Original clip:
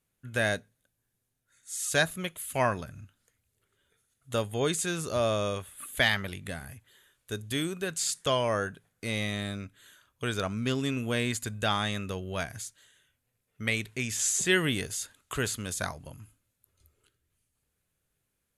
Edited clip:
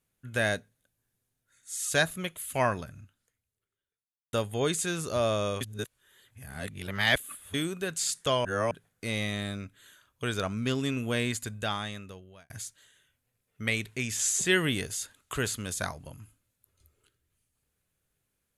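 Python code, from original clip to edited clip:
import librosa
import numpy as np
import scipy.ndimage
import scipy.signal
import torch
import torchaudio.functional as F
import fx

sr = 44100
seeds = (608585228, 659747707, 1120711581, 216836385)

y = fx.edit(x, sr, fx.fade_out_span(start_s=2.79, length_s=1.54, curve='qua'),
    fx.reverse_span(start_s=5.61, length_s=1.93),
    fx.reverse_span(start_s=8.45, length_s=0.26),
    fx.fade_out_span(start_s=11.24, length_s=1.26), tone=tone)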